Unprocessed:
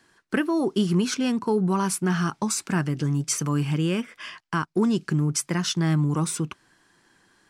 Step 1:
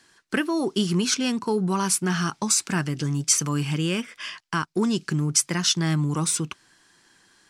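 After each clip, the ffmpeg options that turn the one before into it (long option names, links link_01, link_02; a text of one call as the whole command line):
ffmpeg -i in.wav -af "equalizer=frequency=5900:width_type=o:width=2.8:gain=8.5,volume=-1.5dB" out.wav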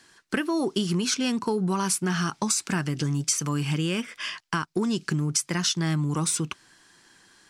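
ffmpeg -i in.wav -af "acompressor=threshold=-24dB:ratio=6,volume=2dB" out.wav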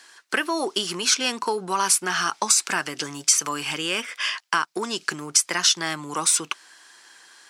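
ffmpeg -i in.wav -af "highpass=580,volume=7dB" out.wav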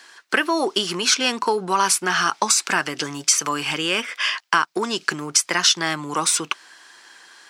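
ffmpeg -i in.wav -af "equalizer=frequency=10000:width=0.64:gain=-6,volume=4.5dB" out.wav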